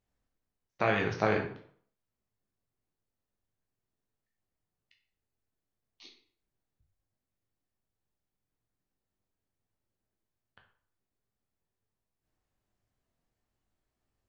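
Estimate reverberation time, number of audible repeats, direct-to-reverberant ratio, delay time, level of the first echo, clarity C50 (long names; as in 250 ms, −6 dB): 0.55 s, no echo audible, 1.0 dB, no echo audible, no echo audible, 7.5 dB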